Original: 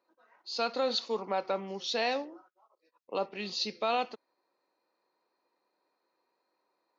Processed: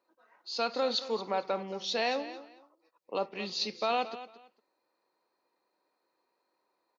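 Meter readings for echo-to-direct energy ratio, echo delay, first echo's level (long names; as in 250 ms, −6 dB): −14.5 dB, 225 ms, −14.5 dB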